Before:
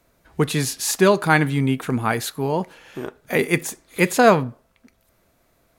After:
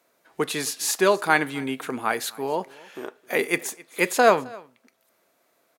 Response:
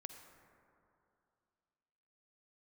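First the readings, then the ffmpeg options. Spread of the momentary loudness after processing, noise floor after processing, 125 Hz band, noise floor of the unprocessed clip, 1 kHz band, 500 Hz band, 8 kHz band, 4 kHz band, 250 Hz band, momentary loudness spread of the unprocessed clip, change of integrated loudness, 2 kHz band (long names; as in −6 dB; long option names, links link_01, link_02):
20 LU, −68 dBFS, −16.5 dB, −64 dBFS, −2.0 dB, −3.0 dB, −2.0 dB, −2.0 dB, −8.0 dB, 18 LU, −3.5 dB, −2.0 dB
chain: -filter_complex "[0:a]highpass=350,asplit=2[link_01][link_02];[link_02]aecho=0:1:264:0.0708[link_03];[link_01][link_03]amix=inputs=2:normalize=0,volume=-2dB"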